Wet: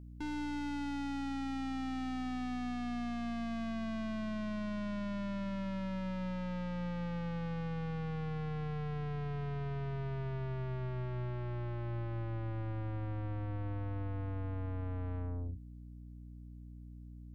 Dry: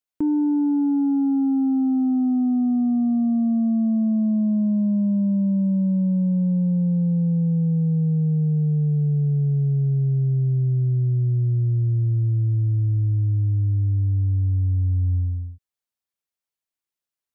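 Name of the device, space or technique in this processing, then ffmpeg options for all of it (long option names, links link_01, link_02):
valve amplifier with mains hum: -af "aeval=exprs='(tanh(79.4*val(0)+0.35)-tanh(0.35))/79.4':channel_layout=same,aeval=exprs='val(0)+0.00398*(sin(2*PI*60*n/s)+sin(2*PI*2*60*n/s)/2+sin(2*PI*3*60*n/s)/3+sin(2*PI*4*60*n/s)/4+sin(2*PI*5*60*n/s)/5)':channel_layout=same"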